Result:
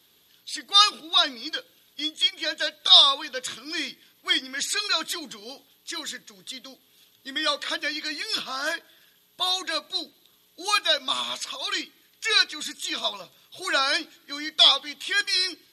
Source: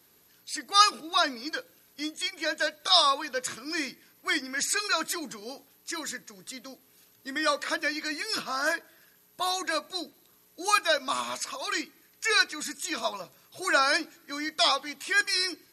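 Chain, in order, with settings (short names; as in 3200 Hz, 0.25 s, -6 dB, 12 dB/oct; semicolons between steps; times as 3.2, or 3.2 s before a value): bell 3400 Hz +14.5 dB 0.58 oct; gain -2 dB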